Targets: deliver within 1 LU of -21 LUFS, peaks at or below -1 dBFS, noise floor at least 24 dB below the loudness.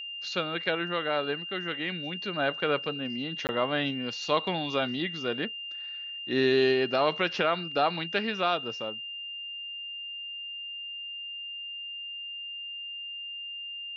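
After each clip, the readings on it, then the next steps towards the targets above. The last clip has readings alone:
dropouts 1; longest dropout 19 ms; steady tone 2800 Hz; tone level -36 dBFS; loudness -30.5 LUFS; peak -10.5 dBFS; loudness target -21.0 LUFS
-> interpolate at 3.47, 19 ms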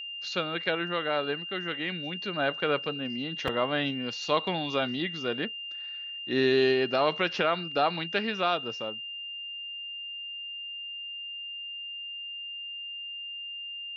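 dropouts 0; steady tone 2800 Hz; tone level -36 dBFS
-> notch 2800 Hz, Q 30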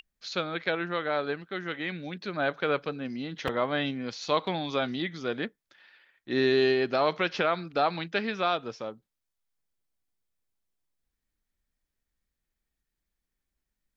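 steady tone none; loudness -29.5 LUFS; peak -11.0 dBFS; loudness target -21.0 LUFS
-> gain +8.5 dB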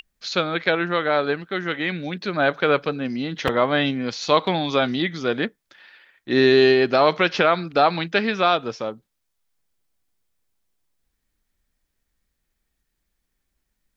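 loudness -21.0 LUFS; peak -2.5 dBFS; noise floor -76 dBFS

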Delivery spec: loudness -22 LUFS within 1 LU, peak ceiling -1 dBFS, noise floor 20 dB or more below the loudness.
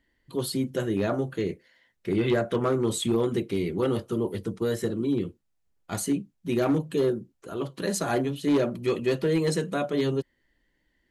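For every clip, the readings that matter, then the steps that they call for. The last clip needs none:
clipped 0.6%; flat tops at -17.5 dBFS; loudness -27.5 LUFS; peak -17.5 dBFS; loudness target -22.0 LUFS
-> clip repair -17.5 dBFS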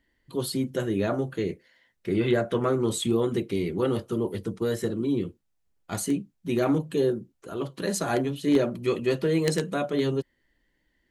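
clipped 0.0%; loudness -27.5 LUFS; peak -8.5 dBFS; loudness target -22.0 LUFS
-> gain +5.5 dB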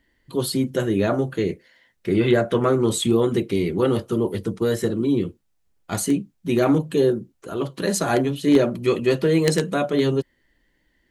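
loudness -22.0 LUFS; peak -3.0 dBFS; noise floor -68 dBFS

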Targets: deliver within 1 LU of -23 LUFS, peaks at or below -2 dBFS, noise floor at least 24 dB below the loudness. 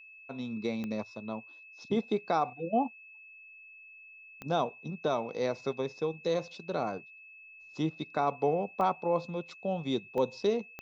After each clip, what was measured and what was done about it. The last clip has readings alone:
clicks 5; steady tone 2600 Hz; tone level -50 dBFS; loudness -33.0 LUFS; peak -15.5 dBFS; loudness target -23.0 LUFS
-> de-click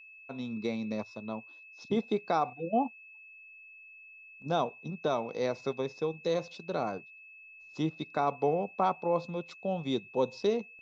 clicks 0; steady tone 2600 Hz; tone level -50 dBFS
-> notch 2600 Hz, Q 30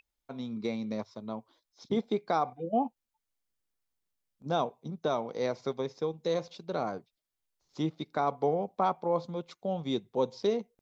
steady tone none; loudness -33.0 LUFS; peak -16.0 dBFS; loudness target -23.0 LUFS
-> gain +10 dB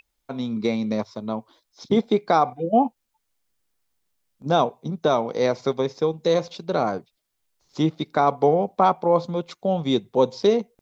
loudness -23.0 LUFS; peak -6.0 dBFS; noise floor -76 dBFS

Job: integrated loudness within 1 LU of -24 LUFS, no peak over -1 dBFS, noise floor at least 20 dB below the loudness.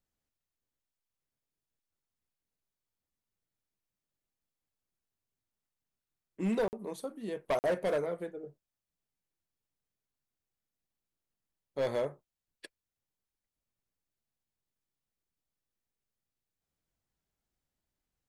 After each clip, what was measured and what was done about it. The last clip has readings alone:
clipped 0.5%; flat tops at -25.5 dBFS; dropouts 2; longest dropout 49 ms; loudness -34.5 LUFS; peak -25.5 dBFS; loudness target -24.0 LUFS
-> clip repair -25.5 dBFS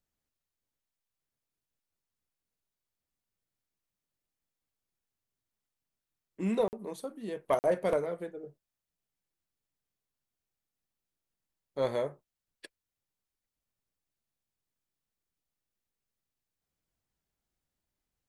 clipped 0.0%; dropouts 2; longest dropout 49 ms
-> interpolate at 6.68/7.59, 49 ms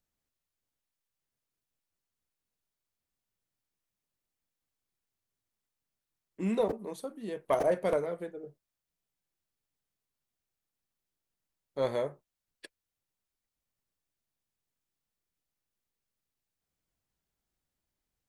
dropouts 0; loudness -32.5 LUFS; peak -16.5 dBFS; loudness target -24.0 LUFS
-> gain +8.5 dB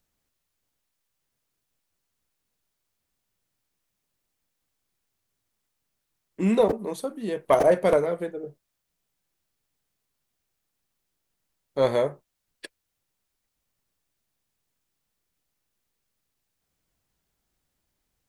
loudness -24.0 LUFS; peak -8.0 dBFS; noise floor -81 dBFS

